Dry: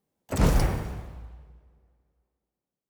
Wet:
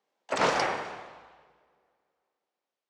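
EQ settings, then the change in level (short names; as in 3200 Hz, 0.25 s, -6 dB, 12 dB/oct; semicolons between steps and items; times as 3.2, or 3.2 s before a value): BPF 650–6800 Hz; air absorption 80 m; +8.0 dB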